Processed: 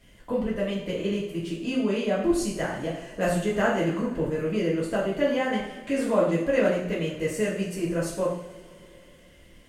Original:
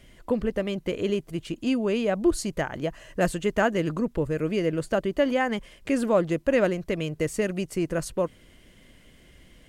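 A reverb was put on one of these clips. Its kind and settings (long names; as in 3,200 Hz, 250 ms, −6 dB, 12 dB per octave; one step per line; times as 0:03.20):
coupled-rooms reverb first 0.59 s, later 3.2 s, from −20 dB, DRR −6.5 dB
level −7.5 dB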